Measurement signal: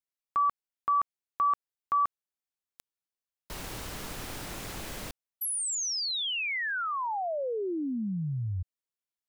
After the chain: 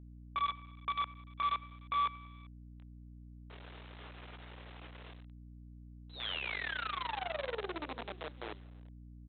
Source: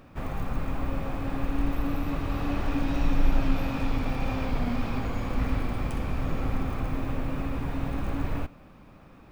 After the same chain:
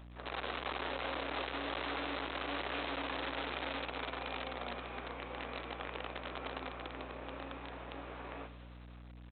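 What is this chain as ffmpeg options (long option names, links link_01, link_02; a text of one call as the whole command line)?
ffmpeg -i in.wav -af "flanger=delay=18:depth=7.9:speed=0.47,aecho=1:1:98|196|294|392|490|588:0.168|0.0974|0.0565|0.0328|0.019|0.011,aresample=8000,acrusher=bits=6:dc=4:mix=0:aa=0.000001,aresample=44100,highpass=frequency=360:width=0.5412,highpass=frequency=360:width=1.3066,aeval=exprs='val(0)+0.00501*(sin(2*PI*60*n/s)+sin(2*PI*2*60*n/s)/2+sin(2*PI*3*60*n/s)/3+sin(2*PI*4*60*n/s)/4+sin(2*PI*5*60*n/s)/5)':channel_layout=same,volume=-4.5dB" out.wav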